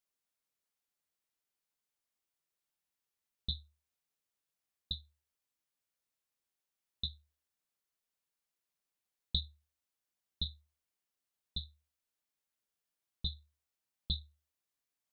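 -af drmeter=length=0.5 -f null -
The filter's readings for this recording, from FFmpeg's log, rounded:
Channel 1: DR: 19.3
Overall DR: 19.3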